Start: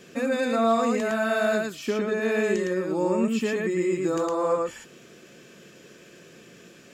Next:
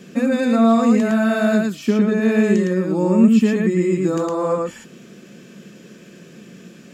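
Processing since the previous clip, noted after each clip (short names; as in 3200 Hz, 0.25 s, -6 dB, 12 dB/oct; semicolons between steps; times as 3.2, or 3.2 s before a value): bell 200 Hz +12.5 dB 0.87 oct; gain +2.5 dB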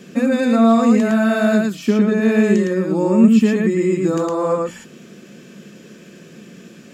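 notches 60/120/180 Hz; gain +1.5 dB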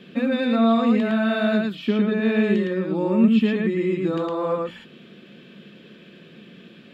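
resonant high shelf 4800 Hz -11 dB, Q 3; gain -5.5 dB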